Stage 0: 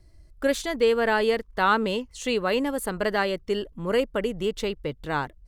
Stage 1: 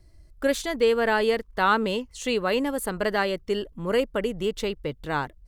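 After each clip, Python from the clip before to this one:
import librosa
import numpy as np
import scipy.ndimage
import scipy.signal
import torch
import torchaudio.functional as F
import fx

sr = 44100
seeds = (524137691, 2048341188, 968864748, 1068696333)

y = fx.high_shelf(x, sr, hz=12000.0, db=3.0)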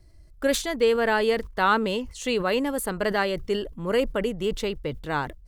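y = fx.sustainer(x, sr, db_per_s=120.0)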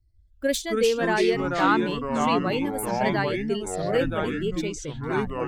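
y = fx.bin_expand(x, sr, power=1.5)
y = fx.echo_pitch(y, sr, ms=158, semitones=-4, count=3, db_per_echo=-3.0)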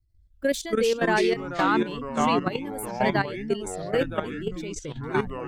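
y = fx.level_steps(x, sr, step_db=12)
y = F.gain(torch.from_numpy(y), 3.0).numpy()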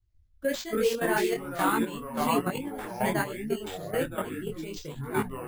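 y = np.repeat(x[::4], 4)[:len(x)]
y = fx.detune_double(y, sr, cents=40)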